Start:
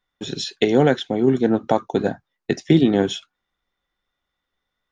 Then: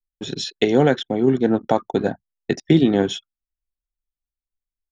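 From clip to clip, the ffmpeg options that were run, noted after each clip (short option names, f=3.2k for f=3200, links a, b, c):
-af "anlmdn=1.58"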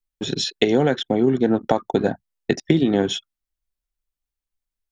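-af "acompressor=threshold=-17dB:ratio=6,volume=3.5dB"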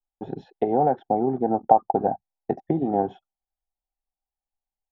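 -af "lowpass=f=790:t=q:w=8.7,volume=-8dB"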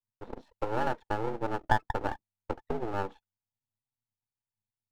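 -af "afreqshift=96,aeval=exprs='max(val(0),0)':c=same,volume=-5.5dB"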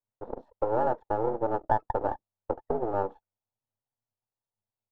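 -filter_complex "[0:a]firequalizer=gain_entry='entry(200,0);entry(560,9);entry(2300,-14)':delay=0.05:min_phase=1,asplit=2[a][b];[b]alimiter=limit=-15dB:level=0:latency=1:release=30,volume=2dB[c];[a][c]amix=inputs=2:normalize=0,volume=-7.5dB"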